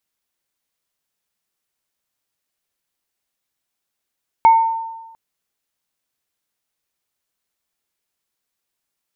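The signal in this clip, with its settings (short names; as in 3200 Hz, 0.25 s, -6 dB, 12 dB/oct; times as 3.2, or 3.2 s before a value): sine partials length 0.70 s, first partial 905 Hz, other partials 2200 Hz, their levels -18.5 dB, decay 1.15 s, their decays 0.44 s, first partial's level -5 dB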